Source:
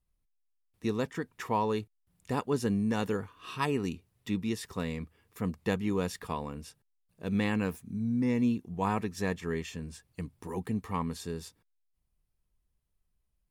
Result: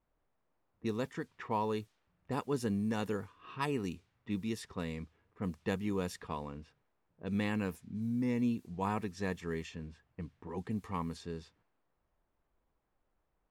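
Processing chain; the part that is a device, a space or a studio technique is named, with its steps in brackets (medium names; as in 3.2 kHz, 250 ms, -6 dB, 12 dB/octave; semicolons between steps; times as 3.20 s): cassette deck with a dynamic noise filter (white noise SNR 33 dB; level-controlled noise filter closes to 930 Hz, open at -28.5 dBFS); trim -4.5 dB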